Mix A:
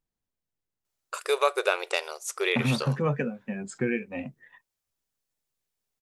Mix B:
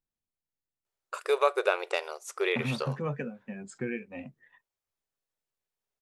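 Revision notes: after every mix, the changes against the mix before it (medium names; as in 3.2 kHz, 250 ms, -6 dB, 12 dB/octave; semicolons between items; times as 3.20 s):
first voice: add treble shelf 2.9 kHz -9.5 dB; second voice -6.5 dB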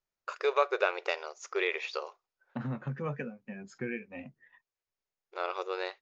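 first voice: entry -0.85 s; master: add rippled Chebyshev low-pass 6.9 kHz, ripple 3 dB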